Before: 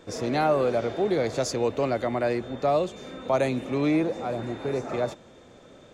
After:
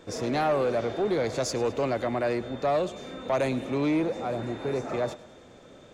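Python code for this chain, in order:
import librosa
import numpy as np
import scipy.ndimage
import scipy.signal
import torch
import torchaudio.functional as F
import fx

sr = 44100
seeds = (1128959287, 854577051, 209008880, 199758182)

y = fx.echo_thinned(x, sr, ms=105, feedback_pct=57, hz=420.0, wet_db=-19)
y = 10.0 ** (-18.5 / 20.0) * np.tanh(y / 10.0 ** (-18.5 / 20.0))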